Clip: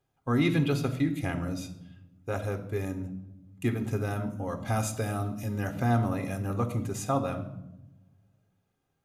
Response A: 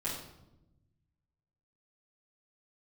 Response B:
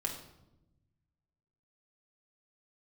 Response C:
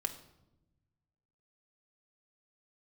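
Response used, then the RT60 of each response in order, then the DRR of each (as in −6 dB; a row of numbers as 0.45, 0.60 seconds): C; 0.95, 0.95, 0.95 seconds; −9.5, 0.5, 7.0 decibels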